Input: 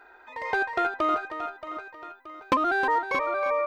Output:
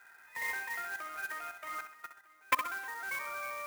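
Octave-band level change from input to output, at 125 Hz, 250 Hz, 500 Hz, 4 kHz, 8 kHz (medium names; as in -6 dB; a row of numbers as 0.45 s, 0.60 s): under -10 dB, -24.5 dB, -21.0 dB, -5.5 dB, no reading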